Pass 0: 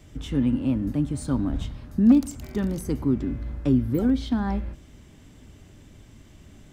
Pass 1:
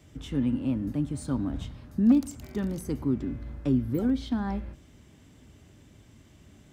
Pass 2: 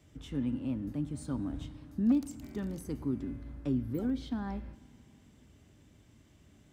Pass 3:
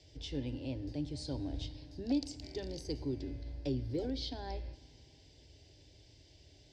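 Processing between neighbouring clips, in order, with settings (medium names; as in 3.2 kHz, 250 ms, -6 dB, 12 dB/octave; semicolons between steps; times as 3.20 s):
high-pass 57 Hz; trim -4 dB
FDN reverb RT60 2.4 s, low-frequency decay 1.5×, high-frequency decay 0.95×, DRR 19 dB; trim -6.5 dB
resonant low-pass 4.8 kHz, resonance Q 5.3; static phaser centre 510 Hz, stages 4; trim +3 dB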